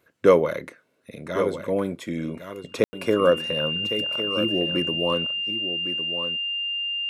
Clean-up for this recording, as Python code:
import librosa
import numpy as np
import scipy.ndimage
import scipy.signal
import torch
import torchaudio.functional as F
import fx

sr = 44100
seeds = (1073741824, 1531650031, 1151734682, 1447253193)

y = fx.notch(x, sr, hz=2800.0, q=30.0)
y = fx.fix_ambience(y, sr, seeds[0], print_start_s=0.64, print_end_s=1.14, start_s=2.84, end_s=2.93)
y = fx.fix_echo_inverse(y, sr, delay_ms=1108, level_db=-10.0)